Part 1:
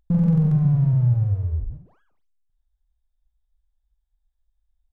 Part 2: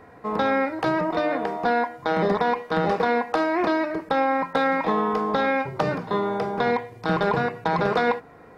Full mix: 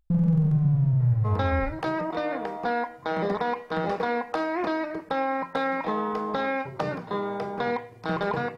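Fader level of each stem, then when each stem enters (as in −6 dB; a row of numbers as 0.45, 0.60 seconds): −3.5, −5.0 decibels; 0.00, 1.00 seconds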